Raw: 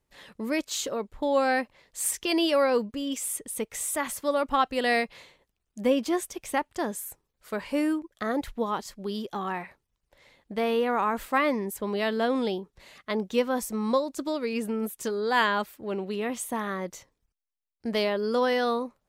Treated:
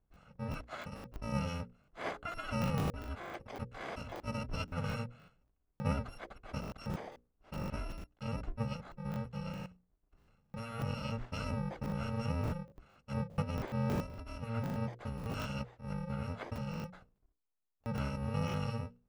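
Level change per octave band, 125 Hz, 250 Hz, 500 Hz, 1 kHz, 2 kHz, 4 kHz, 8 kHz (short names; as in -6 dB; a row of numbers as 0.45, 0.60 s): +9.5, -10.5, -16.5, -14.5, -15.0, -15.0, -23.0 dB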